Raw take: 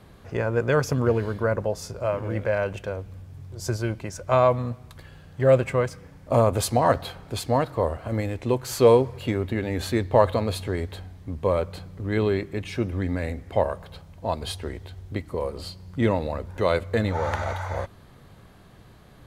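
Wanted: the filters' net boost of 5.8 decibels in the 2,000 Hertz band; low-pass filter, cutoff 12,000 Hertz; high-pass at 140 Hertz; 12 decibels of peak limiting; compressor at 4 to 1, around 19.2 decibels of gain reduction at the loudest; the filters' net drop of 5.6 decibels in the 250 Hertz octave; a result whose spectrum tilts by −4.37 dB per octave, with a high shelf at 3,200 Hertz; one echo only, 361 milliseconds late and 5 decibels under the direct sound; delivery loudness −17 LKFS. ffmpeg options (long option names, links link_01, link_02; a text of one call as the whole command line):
ffmpeg -i in.wav -af "highpass=140,lowpass=12000,equalizer=frequency=250:width_type=o:gain=-7,equalizer=frequency=2000:width_type=o:gain=9,highshelf=frequency=3200:gain=-4.5,acompressor=threshold=-37dB:ratio=4,alimiter=level_in=8dB:limit=-24dB:level=0:latency=1,volume=-8dB,aecho=1:1:361:0.562,volume=25.5dB" out.wav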